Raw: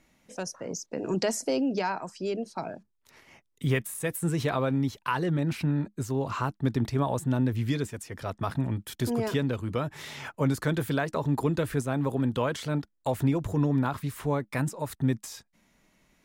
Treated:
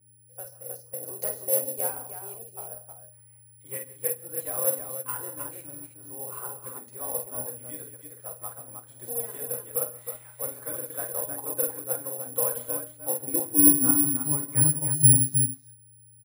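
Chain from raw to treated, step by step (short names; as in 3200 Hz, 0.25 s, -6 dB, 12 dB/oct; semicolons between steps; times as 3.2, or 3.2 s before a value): high-pass sweep 550 Hz -> 160 Hz, 12.6–14.64; buzz 120 Hz, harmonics 3, -56 dBFS -4 dB/oct; in parallel at -10 dB: one-sided clip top -23 dBFS; on the sum: air absorption 170 m; tapped delay 47/49/136/172/182/315 ms -12/-7.5/-15/-18.5/-16.5/-4.5 dB; on a send at -1.5 dB: reverb RT60 0.40 s, pre-delay 3 ms; on the sum: careless resampling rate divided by 4×, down none, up zero stuff; upward expander 1.5:1, over -29 dBFS; gain -11 dB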